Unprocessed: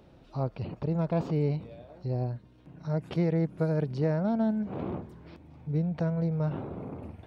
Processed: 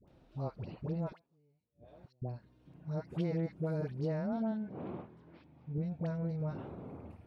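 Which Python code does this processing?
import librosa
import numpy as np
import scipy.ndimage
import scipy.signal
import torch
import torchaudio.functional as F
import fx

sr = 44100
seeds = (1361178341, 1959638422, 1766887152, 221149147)

y = fx.gate_flip(x, sr, shuts_db=-35.0, range_db=-37, at=(1.1, 2.22))
y = fx.bandpass_edges(y, sr, low_hz=110.0, high_hz=4100.0, at=(4.32, 5.78))
y = fx.dispersion(y, sr, late='highs', ms=79.0, hz=810.0)
y = y * 10.0 ** (-7.5 / 20.0)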